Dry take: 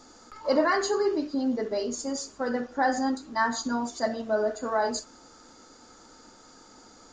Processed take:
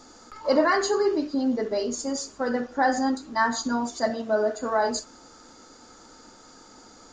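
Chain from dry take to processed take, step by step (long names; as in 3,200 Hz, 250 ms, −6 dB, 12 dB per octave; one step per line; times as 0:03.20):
0:04.10–0:04.57: high-pass filter 98 Hz
level +2.5 dB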